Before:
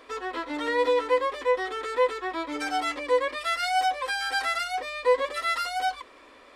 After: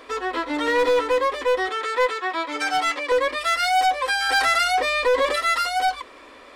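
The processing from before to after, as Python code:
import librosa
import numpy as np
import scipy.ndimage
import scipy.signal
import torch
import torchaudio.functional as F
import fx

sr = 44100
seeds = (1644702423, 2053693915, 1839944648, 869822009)

y = fx.weighting(x, sr, curve='A', at=(1.69, 3.12))
y = np.clip(y, -10.0 ** (-22.0 / 20.0), 10.0 ** (-22.0 / 20.0))
y = fx.env_flatten(y, sr, amount_pct=50, at=(4.29, 5.36))
y = F.gain(torch.from_numpy(y), 6.5).numpy()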